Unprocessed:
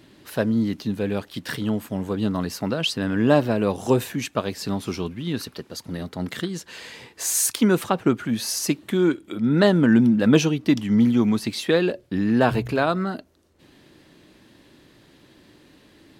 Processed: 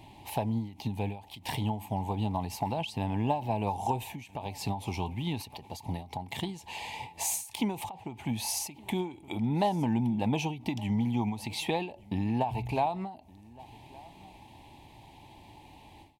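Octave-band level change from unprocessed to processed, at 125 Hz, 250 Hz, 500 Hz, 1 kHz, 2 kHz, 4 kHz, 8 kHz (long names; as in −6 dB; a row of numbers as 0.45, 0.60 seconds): −6.5, −12.0, −13.0, −2.0, −12.5, −9.5, −9.5 decibels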